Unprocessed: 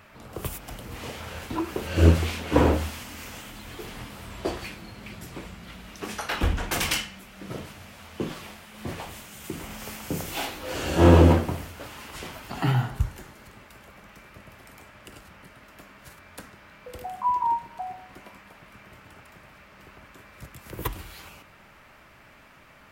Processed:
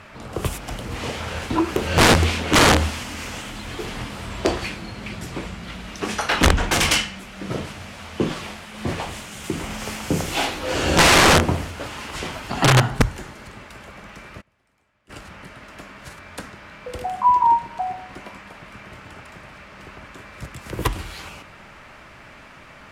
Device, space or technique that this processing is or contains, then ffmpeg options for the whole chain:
overflowing digital effects unit: -filter_complex "[0:a]asplit=3[a][b][c];[a]afade=t=out:st=14.4:d=0.02[d];[b]agate=range=-27dB:threshold=-40dB:ratio=16:detection=peak,afade=t=in:st=14.4:d=0.02,afade=t=out:st=15.09:d=0.02[e];[c]afade=t=in:st=15.09:d=0.02[f];[d][e][f]amix=inputs=3:normalize=0,aeval=exprs='(mod(6.31*val(0)+1,2)-1)/6.31':c=same,lowpass=9k,volume=8.5dB"

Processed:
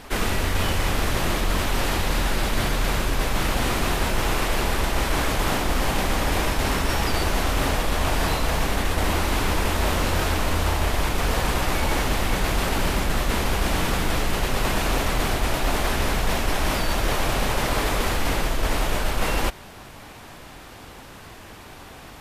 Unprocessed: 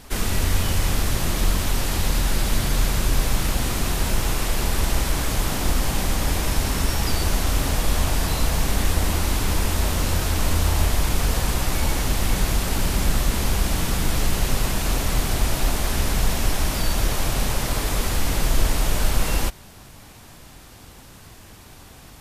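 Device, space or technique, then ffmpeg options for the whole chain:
compression on the reversed sound: -af "areverse,acompressor=threshold=-18dB:ratio=6,areverse,bass=f=250:g=-7,treble=f=4k:g=-9,volume=6.5dB"

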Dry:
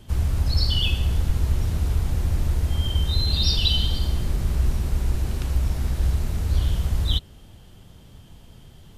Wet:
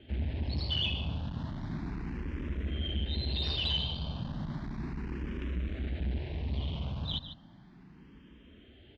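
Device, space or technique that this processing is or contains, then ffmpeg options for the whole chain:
barber-pole phaser into a guitar amplifier: -filter_complex "[0:a]aecho=1:1:148:0.251,asplit=2[a][b];[b]afreqshift=0.34[c];[a][c]amix=inputs=2:normalize=1,asoftclip=type=tanh:threshold=-21.5dB,highpass=82,equalizer=f=98:t=q:w=4:g=-10,equalizer=f=280:t=q:w=4:g=3,equalizer=f=490:t=q:w=4:g=-4,equalizer=f=770:t=q:w=4:g=-3,equalizer=f=1.3k:t=q:w=4:g=-6,lowpass=f=3.4k:w=0.5412,lowpass=f=3.4k:w=1.3066"

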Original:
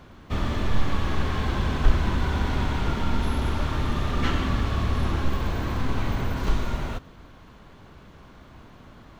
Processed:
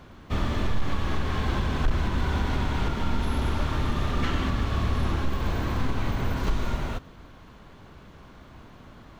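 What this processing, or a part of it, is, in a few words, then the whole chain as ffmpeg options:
clipper into limiter: -af "asoftclip=type=hard:threshold=-11.5dB,alimiter=limit=-15.5dB:level=0:latency=1:release=147"

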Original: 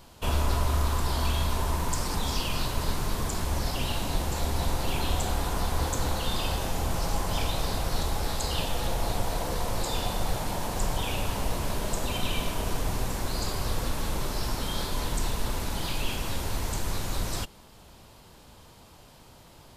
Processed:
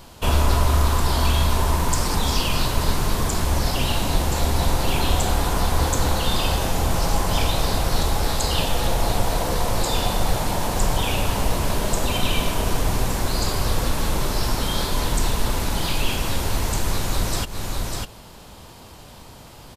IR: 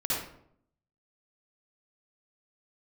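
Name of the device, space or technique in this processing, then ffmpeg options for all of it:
ducked delay: -filter_complex "[0:a]asplit=3[a][b][c];[b]adelay=599,volume=-4dB[d];[c]apad=whole_len=897912[e];[d][e]sidechaincompress=threshold=-43dB:ratio=8:attack=9.3:release=144[f];[a][f]amix=inputs=2:normalize=0,volume=7.5dB"

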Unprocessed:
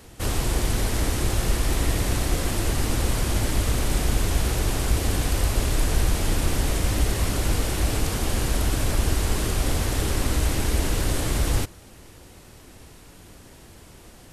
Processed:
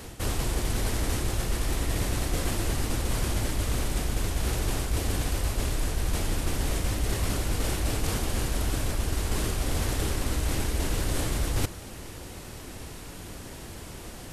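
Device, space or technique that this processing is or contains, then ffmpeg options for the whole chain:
compression on the reversed sound: -af "areverse,acompressor=threshold=-29dB:ratio=12,areverse,volume=6dB"

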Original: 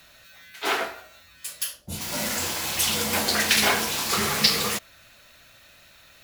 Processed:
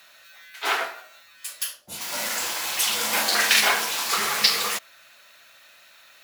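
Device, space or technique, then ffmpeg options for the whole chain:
filter by subtraction: -filter_complex "[0:a]asplit=2[a][b];[b]lowpass=1.1k,volume=-1[c];[a][c]amix=inputs=2:normalize=0,asettb=1/sr,asplit=3[d][e][f];[d]atrim=end=2.994[g];[e]atrim=start=2.99:end=3.61,asetpts=PTS-STARTPTS,afade=t=in:d=0.004:c=qsin,afade=t=out:st=0.616:d=0.004:c=qsin,asplit=2[h][i];[i]adelay=41,volume=-3.5dB[j];[h][j]amix=inputs=2:normalize=0,atrim=end_sample=27342[k];[f]atrim=start=3.606[l];[g][k]acrossfade=d=0.004:c1=hsin:c2=qsin[m];[m][l]acrossfade=d=0.004:c1=qsin:c2=hsin"

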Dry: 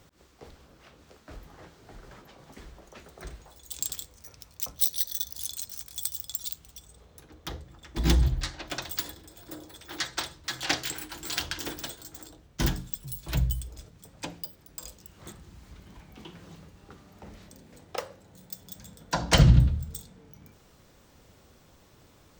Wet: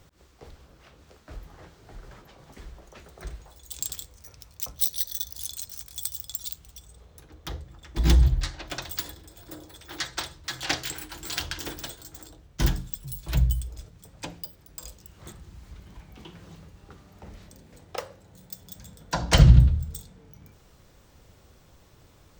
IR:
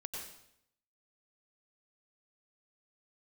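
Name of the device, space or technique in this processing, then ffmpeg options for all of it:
low shelf boost with a cut just above: -af "lowshelf=f=110:g=6.5,equalizer=f=240:t=o:w=0.67:g=-3"

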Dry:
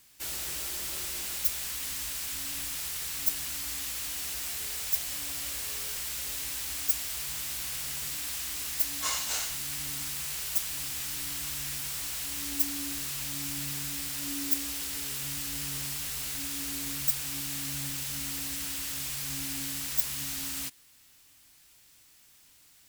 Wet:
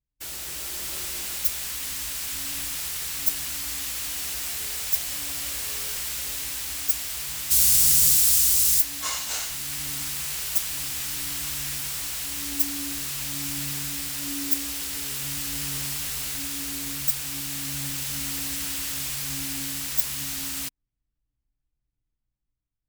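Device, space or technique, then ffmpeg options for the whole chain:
voice memo with heavy noise removal: -filter_complex "[0:a]asplit=3[a][b][c];[a]afade=t=out:st=7.5:d=0.02[d];[b]bass=f=250:g=10,treble=f=4k:g=15,afade=t=in:st=7.5:d=0.02,afade=t=out:st=8.79:d=0.02[e];[c]afade=t=in:st=8.79:d=0.02[f];[d][e][f]amix=inputs=3:normalize=0,anlmdn=1,dynaudnorm=f=160:g=9:m=5dB"

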